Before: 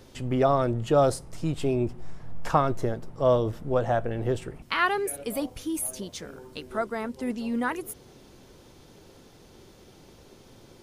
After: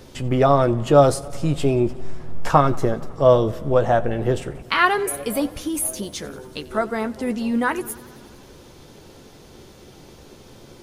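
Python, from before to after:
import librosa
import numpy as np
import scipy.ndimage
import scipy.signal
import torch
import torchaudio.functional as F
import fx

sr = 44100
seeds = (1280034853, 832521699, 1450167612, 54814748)

y = fx.doubler(x, sr, ms=14.0, db=-10.5)
y = fx.echo_warbled(y, sr, ms=92, feedback_pct=75, rate_hz=2.8, cents=72, wet_db=-22)
y = F.gain(torch.from_numpy(y), 6.5).numpy()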